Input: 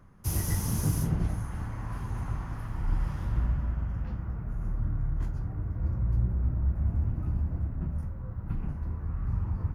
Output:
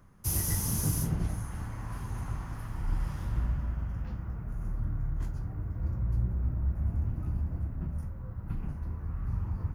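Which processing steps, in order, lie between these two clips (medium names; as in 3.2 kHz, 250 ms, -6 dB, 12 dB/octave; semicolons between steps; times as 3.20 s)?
treble shelf 4.4 kHz +8 dB; trim -2.5 dB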